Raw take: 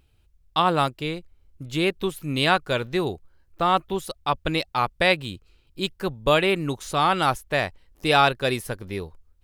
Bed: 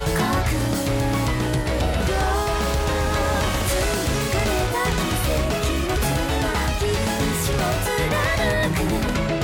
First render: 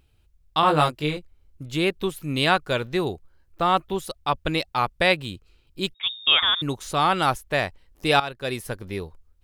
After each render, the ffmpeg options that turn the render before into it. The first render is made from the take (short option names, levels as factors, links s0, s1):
-filter_complex "[0:a]asettb=1/sr,asplit=3[s0][s1][s2];[s0]atrim=end=0.614[s3];[s1]atrim=start=0.61:end=1.17,asetpts=PTS-STARTPTS,afade=t=in:d=0.004:c=qsin,afade=t=out:st=0.556:d=0.004:c=qsin,asplit=2[s4][s5];[s5]adelay=20,volume=0.794[s6];[s4][s6]amix=inputs=2:normalize=0,atrim=end_sample=24696[s7];[s2]atrim=start=1.166[s8];[s3][s7]acrossfade=d=0.004:c1=hsin:c2=qsin[s9];[s9][s8]acrossfade=d=0.004:c1=qsin:c2=hsin,asettb=1/sr,asplit=3[s10][s11][s12];[s10]atrim=end=5.944[s13];[s11]atrim=start=5.94:end=6.62,asetpts=PTS-STARTPTS,afade=t=in:d=0.004:c=qsin,afade=t=out:st=0.676:d=0.004:c=qsin,lowpass=f=3200:t=q:w=0.5098,lowpass=f=3200:t=q:w=0.6013,lowpass=f=3200:t=q:w=0.9,lowpass=f=3200:t=q:w=2.563,afreqshift=-3800[s14];[s12]atrim=start=6.616[s15];[s13][s14]acrossfade=d=0.004:c1=hsin:c2=qsin[s16];[s16][s15]acrossfade=d=0.004:c1=qsin:c2=hsin,asplit=2[s17][s18];[s17]atrim=end=8.2,asetpts=PTS-STARTPTS,afade=t=out:st=8.196:d=0.004:c=hsin:silence=0.149624[s19];[s18]atrim=start=8.2,asetpts=PTS-STARTPTS,afade=t=in:d=0.55:silence=0.149624[s20];[s19][s20]concat=n=2:v=0:a=1"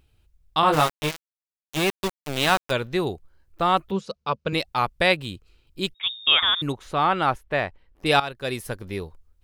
-filter_complex "[0:a]asplit=3[s0][s1][s2];[s0]afade=t=out:st=0.72:d=0.02[s3];[s1]aeval=exprs='val(0)*gte(abs(val(0)),0.0794)':c=same,afade=t=in:st=0.72:d=0.02,afade=t=out:st=2.7:d=0.02[s4];[s2]afade=t=in:st=2.7:d=0.02[s5];[s3][s4][s5]amix=inputs=3:normalize=0,asettb=1/sr,asplit=3[s6][s7][s8];[s6]atrim=end=3.914[s9];[s7]atrim=start=3.91:end=4.53,asetpts=PTS-STARTPTS,afade=t=in:d=0.004:c=qsin,afade=t=out:st=0.616:d=0.004:c=qsin,highpass=130,equalizer=f=200:t=q:w=4:g=8,equalizer=f=320:t=q:w=4:g=-10,equalizer=f=470:t=q:w=4:g=7,equalizer=f=760:t=q:w=4:g=-8,equalizer=f=1900:t=q:w=4:g=-9,equalizer=f=3400:t=q:w=4:g=-7,lowpass=f=5900:w=0.5412,lowpass=f=5900:w=1.3066[s10];[s8]atrim=start=4.526[s11];[s9][s10]acrossfade=d=0.004:c1=hsin:c2=qsin[s12];[s12][s11]acrossfade=d=0.004:c1=qsin:c2=hsin,asettb=1/sr,asplit=3[s13][s14][s15];[s13]atrim=end=6.724[s16];[s14]atrim=start=6.72:end=8.06,asetpts=PTS-STARTPTS,afade=t=in:d=0.004:c=qsin,afade=t=out:st=1.336:d=0.004:c=qsin,bass=f=250:g=-2,treble=f=4000:g=-15[s17];[s15]atrim=start=8.056[s18];[s16][s17]acrossfade=d=0.004:c1=hsin:c2=qsin[s19];[s19][s18]acrossfade=d=0.004:c1=qsin:c2=hsin"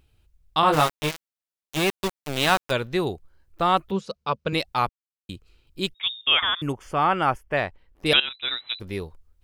-filter_complex "[0:a]asettb=1/sr,asplit=3[s0][s1][s2];[s0]atrim=end=6.214[s3];[s1]atrim=start=6.21:end=7.57,asetpts=PTS-STARTPTS,afade=t=in:d=0.004:c=qsin,afade=t=out:st=1.356:d=0.004:c=qsin,asuperstop=centerf=3900:order=4:qfactor=3.3[s4];[s2]atrim=start=7.566[s5];[s3][s4]acrossfade=d=0.004:c1=hsin:c2=qsin[s6];[s6][s5]acrossfade=d=0.004:c1=qsin:c2=hsin,asettb=1/sr,asplit=3[s7][s8][s9];[s7]atrim=end=8.134[s10];[s8]atrim=start=8.13:end=8.8,asetpts=PTS-STARTPTS,afade=t=in:d=0.004:c=qsin,afade=t=out:st=0.666:d=0.004:c=qsin,lowpass=f=3400:t=q:w=0.5098,lowpass=f=3400:t=q:w=0.6013,lowpass=f=3400:t=q:w=0.9,lowpass=f=3400:t=q:w=2.563,afreqshift=-4000[s11];[s9]atrim=start=8.796[s12];[s10][s11]acrossfade=d=0.004:c1=hsin:c2=qsin[s13];[s13][s12]acrossfade=d=0.004:c1=qsin:c2=hsin,asplit=3[s14][s15][s16];[s14]atrim=end=4.89,asetpts=PTS-STARTPTS,afade=t=out:st=4.886:d=0.004:c=hsin[s17];[s15]atrim=start=4.89:end=5.29,asetpts=PTS-STARTPTS,volume=0[s18];[s16]atrim=start=5.29,asetpts=PTS-STARTPTS,afade=t=in:d=0.004:c=hsin[s19];[s17][s18][s19]concat=n=3:v=0:a=1"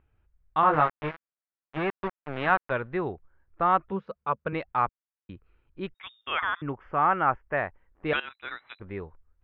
-af "lowpass=f=1700:w=0.5412,lowpass=f=1700:w=1.3066,tiltshelf=f=1300:g=-6"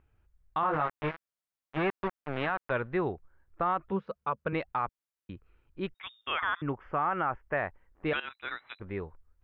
-af "alimiter=limit=0.106:level=0:latency=1:release=68"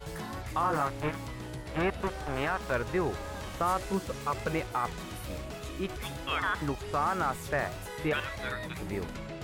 -filter_complex "[1:a]volume=0.126[s0];[0:a][s0]amix=inputs=2:normalize=0"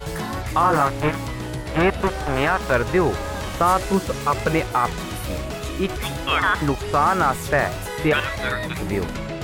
-af "volume=3.55"